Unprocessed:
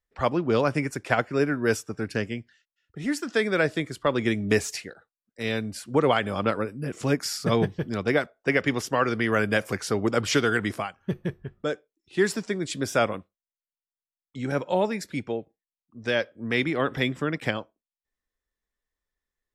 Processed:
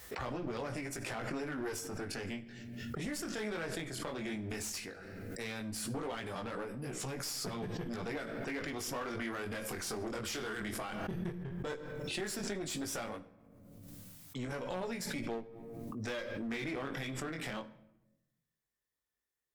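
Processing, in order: high-pass 76 Hz 12 dB/octave; treble shelf 7.4 kHz +9 dB; peak limiter -18 dBFS, peak gain reduction 11 dB; compression 2:1, threshold -33 dBFS, peak gain reduction 6.5 dB; chorus 0.14 Hz, delay 16 ms, depth 7.7 ms; one-sided clip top -39 dBFS; reverberation RT60 0.90 s, pre-delay 3 ms, DRR 12.5 dB; swell ahead of each attack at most 24 dB/s; trim -2 dB

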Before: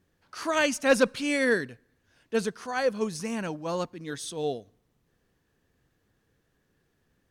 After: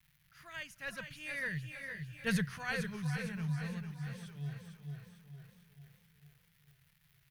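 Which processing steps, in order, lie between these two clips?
Doppler pass-by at 2.38 s, 13 m/s, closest 2.8 m; crackle 450 per s -56 dBFS; FFT filter 110 Hz 0 dB, 150 Hz +8 dB, 250 Hz -27 dB, 440 Hz -26 dB, 1.2 kHz -18 dB, 1.8 kHz -8 dB, 5.2 kHz -15 dB, 12 kHz -8 dB; vibrato 0.88 Hz 31 cents; peaking EQ 7.7 kHz -8.5 dB 0.69 oct; feedback delay 448 ms, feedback 51%, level -10 dB; modulated delay 457 ms, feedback 46%, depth 64 cents, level -9 dB; trim +12.5 dB

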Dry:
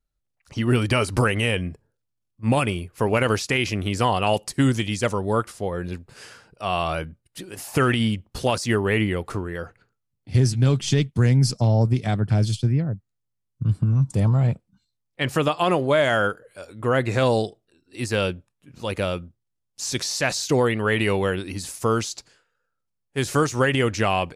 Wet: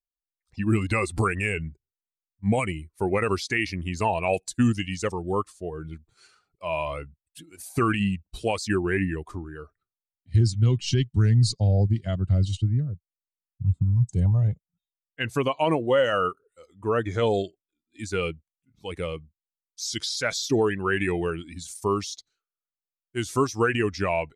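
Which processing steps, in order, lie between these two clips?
expander on every frequency bin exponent 1.5; pitch shift -2 st

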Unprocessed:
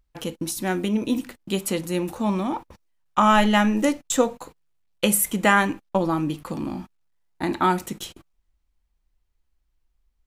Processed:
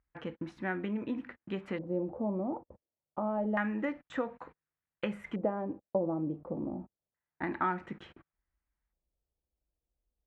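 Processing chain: high-pass 51 Hz; treble shelf 6.9 kHz -10 dB; compression 2.5:1, threshold -23 dBFS, peak gain reduction 7.5 dB; LFO low-pass square 0.28 Hz 580–1800 Hz; trim -9 dB

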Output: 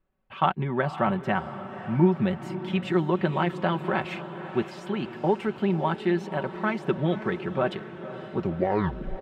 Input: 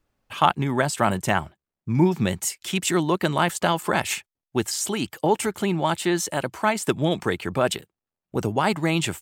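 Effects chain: tape stop on the ending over 0.86 s; distance through air 390 m; comb 5.3 ms, depth 56%; on a send: echo that smears into a reverb 535 ms, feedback 62%, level -12.5 dB; on the sum: trim -3.5 dB

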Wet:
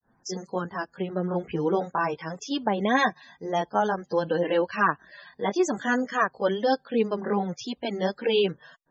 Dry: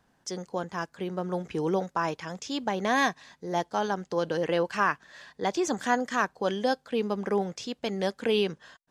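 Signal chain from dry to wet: granulator 192 ms, grains 20 per s, spray 16 ms, pitch spread up and down by 0 st; loudest bins only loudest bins 64; trim +6.5 dB

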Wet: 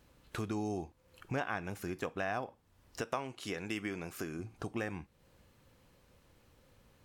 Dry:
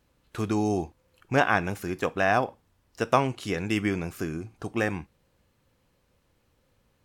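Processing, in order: 3.01–4.39 s: bass shelf 190 Hz -10 dB; compression 2.5:1, threshold -45 dBFS, peak gain reduction 19 dB; trim +3.5 dB

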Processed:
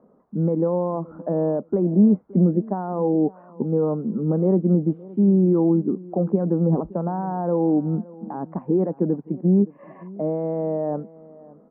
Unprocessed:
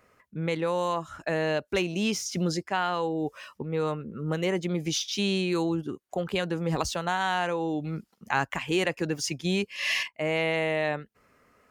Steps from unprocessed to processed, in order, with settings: peak limiter -20.5 dBFS, peak gain reduction 10.5 dB; resonant low shelf 140 Hz -11.5 dB, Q 3; on a send: feedback delay 569 ms, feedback 24%, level -21 dB; on the sum: added noise blue -50 dBFS; Bessel low-pass 580 Hz, order 6; trim +9 dB

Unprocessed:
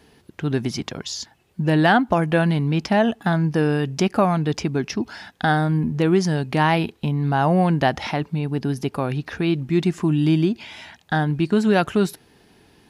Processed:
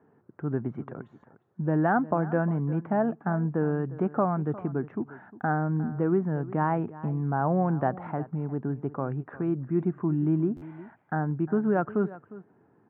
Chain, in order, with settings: elliptic band-pass 110–1400 Hz, stop band 50 dB; on a send: delay 355 ms -17.5 dB; on the sum: buffer glitch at 10.56 s, samples 512, times 4; trim -6.5 dB

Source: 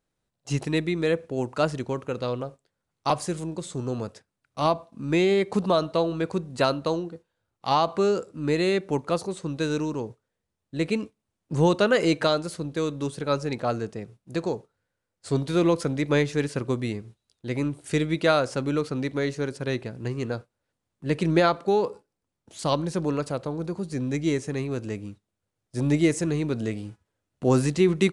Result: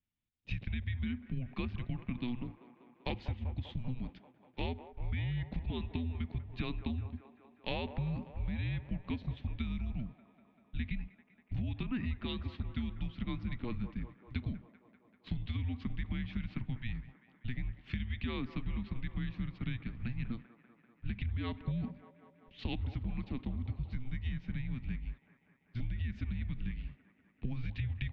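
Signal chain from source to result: gate -43 dBFS, range -7 dB; mistuned SSB -250 Hz 160–3500 Hz; high-order bell 720 Hz -13.5 dB 2.5 oct; peak limiter -19.5 dBFS, peak gain reduction 9.5 dB; compression 10:1, threshold -34 dBFS, peak gain reduction 12 dB; on a send: feedback echo behind a band-pass 195 ms, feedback 74%, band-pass 780 Hz, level -10 dB; 11.83–12.41 s: on the sum: three bands expanded up and down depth 100%; trim +1.5 dB

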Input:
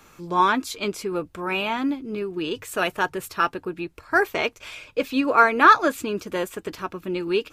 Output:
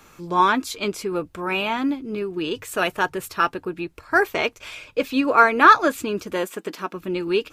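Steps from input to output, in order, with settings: 6.33–6.96 s: brick-wall FIR high-pass 160 Hz; trim +1.5 dB

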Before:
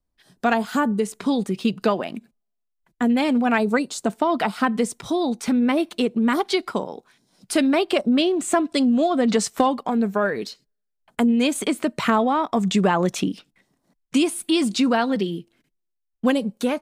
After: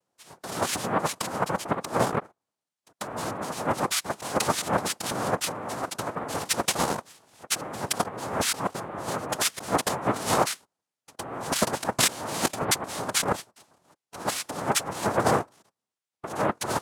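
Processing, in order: compressor with a negative ratio -26 dBFS, ratio -0.5; spectral selection erased 1.45–2.40 s, 670–3900 Hz; noise-vocoded speech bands 2; formant shift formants +4 st

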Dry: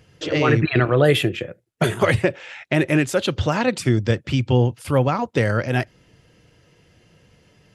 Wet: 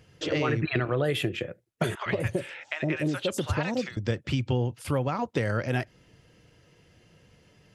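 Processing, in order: compression, threshold -19 dBFS, peak gain reduction 8 dB; 1.95–3.97 s: three bands offset in time mids, lows, highs 110/250 ms, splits 800/5000 Hz; trim -3.5 dB

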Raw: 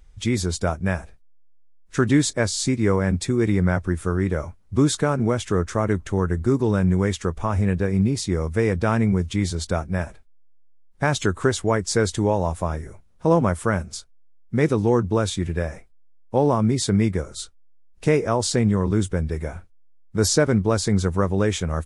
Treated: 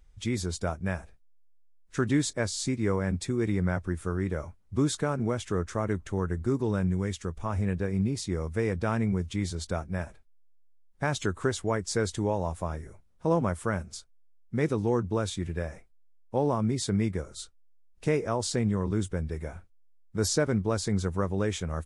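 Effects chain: 6.87–7.46 s: peaking EQ 850 Hz -5 dB 2.7 oct; trim -7.5 dB

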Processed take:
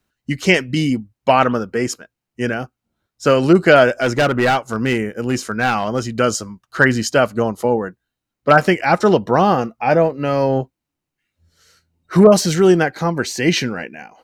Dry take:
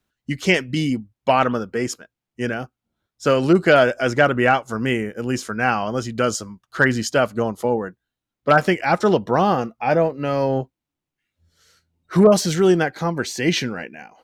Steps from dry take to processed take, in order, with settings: band-stop 3.4 kHz, Q 15; 3.89–6.16 s: hard clipper -14.5 dBFS, distortion -18 dB; trim +3.5 dB

